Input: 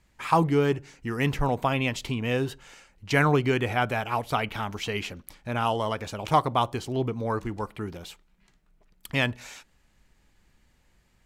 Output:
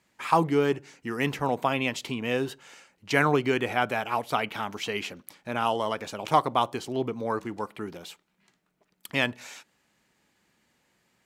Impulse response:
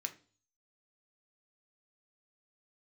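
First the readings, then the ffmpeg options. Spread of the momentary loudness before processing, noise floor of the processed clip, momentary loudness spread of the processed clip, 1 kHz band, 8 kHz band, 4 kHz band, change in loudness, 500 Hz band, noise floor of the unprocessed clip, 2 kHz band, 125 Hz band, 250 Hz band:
13 LU, −72 dBFS, 15 LU, 0.0 dB, 0.0 dB, 0.0 dB, −1.0 dB, 0.0 dB, −65 dBFS, 0.0 dB, −7.0 dB, −1.5 dB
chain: -af "highpass=190"

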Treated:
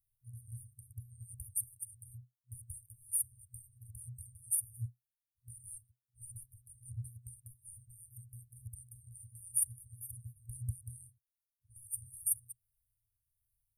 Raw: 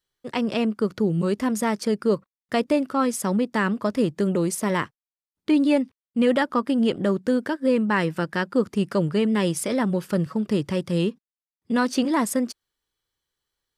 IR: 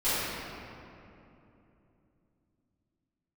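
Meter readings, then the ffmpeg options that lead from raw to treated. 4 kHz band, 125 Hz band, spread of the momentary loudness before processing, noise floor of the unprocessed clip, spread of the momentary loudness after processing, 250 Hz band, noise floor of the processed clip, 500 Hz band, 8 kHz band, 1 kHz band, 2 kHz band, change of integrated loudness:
below −40 dB, −15.5 dB, 5 LU, below −85 dBFS, 19 LU, below −40 dB, below −85 dBFS, below −40 dB, −1.5 dB, below −40 dB, below −40 dB, −15.5 dB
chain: -af "afftfilt=real='re*(1-between(b*sr/4096,120,8600))':imag='im*(1-between(b*sr/4096,120,8600))':win_size=4096:overlap=0.75,tremolo=f=1.4:d=0.36,equalizer=frequency=125:width_type=o:width=0.33:gain=11,equalizer=frequency=315:width_type=o:width=0.33:gain=-6,equalizer=frequency=630:width_type=o:width=0.33:gain=6,equalizer=frequency=1000:width_type=o:width=0.33:gain=-4,equalizer=frequency=2500:width_type=o:width=0.33:gain=11,volume=5dB"

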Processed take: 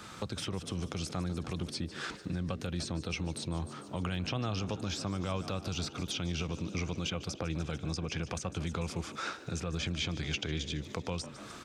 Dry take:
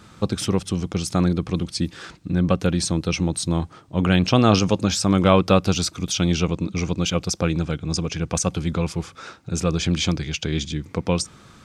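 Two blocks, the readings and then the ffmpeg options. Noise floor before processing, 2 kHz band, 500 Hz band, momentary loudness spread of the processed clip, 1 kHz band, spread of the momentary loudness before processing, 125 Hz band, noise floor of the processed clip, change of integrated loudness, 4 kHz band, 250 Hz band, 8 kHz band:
−49 dBFS, −10.0 dB, −16.5 dB, 4 LU, −14.5 dB, 10 LU, −13.5 dB, −48 dBFS, −14.0 dB, −11.0 dB, −16.0 dB, −15.0 dB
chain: -filter_complex "[0:a]acrossover=split=120[link_01][link_02];[link_02]acompressor=threshold=-34dB:ratio=3[link_03];[link_01][link_03]amix=inputs=2:normalize=0,asplit=7[link_04][link_05][link_06][link_07][link_08][link_09][link_10];[link_05]adelay=147,afreqshift=60,volume=-18dB[link_11];[link_06]adelay=294,afreqshift=120,volume=-22.2dB[link_12];[link_07]adelay=441,afreqshift=180,volume=-26.3dB[link_13];[link_08]adelay=588,afreqshift=240,volume=-30.5dB[link_14];[link_09]adelay=735,afreqshift=300,volume=-34.6dB[link_15];[link_10]adelay=882,afreqshift=360,volume=-38.8dB[link_16];[link_04][link_11][link_12][link_13][link_14][link_15][link_16]amix=inputs=7:normalize=0,acrossover=split=3800[link_17][link_18];[link_17]alimiter=limit=-23dB:level=0:latency=1:release=67[link_19];[link_18]acompressor=threshold=-48dB:ratio=6[link_20];[link_19][link_20]amix=inputs=2:normalize=0,lowshelf=frequency=310:gain=-9.5,volume=3dB"

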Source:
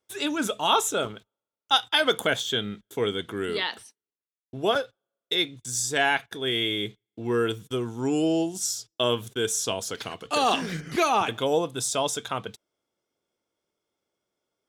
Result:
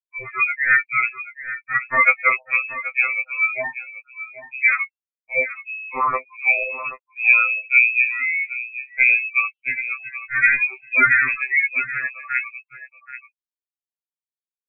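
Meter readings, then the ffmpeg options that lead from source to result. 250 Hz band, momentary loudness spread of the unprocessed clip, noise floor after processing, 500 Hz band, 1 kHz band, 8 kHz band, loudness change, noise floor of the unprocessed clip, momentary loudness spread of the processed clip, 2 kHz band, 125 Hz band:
below −15 dB, 10 LU, below −85 dBFS, −8.5 dB, +2.0 dB, below −40 dB, +7.5 dB, below −85 dBFS, 16 LU, +15.0 dB, below −10 dB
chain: -af "afftfilt=real='re*gte(hypot(re,im),0.0708)':imag='im*gte(hypot(re,im),0.0708)':win_size=1024:overlap=0.75,bandreject=frequency=1700:width=13,agate=range=-16dB:threshold=-46dB:ratio=16:detection=peak,adynamicequalizer=threshold=0.0141:dfrequency=240:dqfactor=1.2:tfrequency=240:tqfactor=1.2:attack=5:release=100:ratio=0.375:range=2.5:mode=boostabove:tftype=bell,aecho=1:1:780:0.211,lowpass=frequency=2300:width_type=q:width=0.5098,lowpass=frequency=2300:width_type=q:width=0.6013,lowpass=frequency=2300:width_type=q:width=0.9,lowpass=frequency=2300:width_type=q:width=2.563,afreqshift=-2700,afftfilt=real='re*2.45*eq(mod(b,6),0)':imag='im*2.45*eq(mod(b,6),0)':win_size=2048:overlap=0.75,volume=9dB"

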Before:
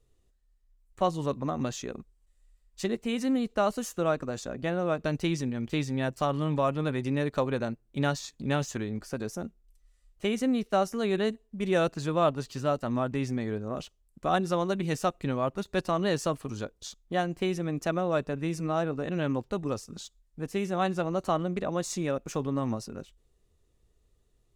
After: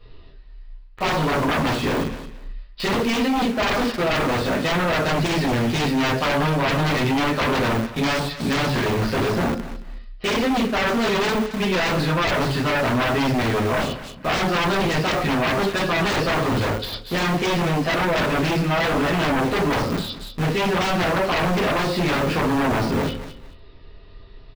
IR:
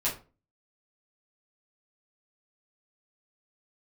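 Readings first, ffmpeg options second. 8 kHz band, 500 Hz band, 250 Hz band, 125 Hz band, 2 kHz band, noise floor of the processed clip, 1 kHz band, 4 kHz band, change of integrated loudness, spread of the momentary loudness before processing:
+7.0 dB, +7.0 dB, +8.0 dB, +9.0 dB, +15.5 dB, −42 dBFS, +10.0 dB, +15.0 dB, +9.0 dB, 9 LU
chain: -filter_complex "[0:a]aresample=11025,aresample=44100[link_01];[1:a]atrim=start_sample=2205[link_02];[link_01][link_02]afir=irnorm=-1:irlink=0,asplit=2[link_03][link_04];[link_04]acrusher=bits=5:mix=0:aa=0.000001,volume=-3dB[link_05];[link_03][link_05]amix=inputs=2:normalize=0,equalizer=frequency=1800:width=0.4:gain=6,areverse,acompressor=threshold=-26dB:ratio=6,areverse,aeval=exprs='0.141*sin(PI/2*3.55*val(0)/0.141)':channel_layout=same,aecho=1:1:220|440:0.158|0.0365,deesser=0.55"

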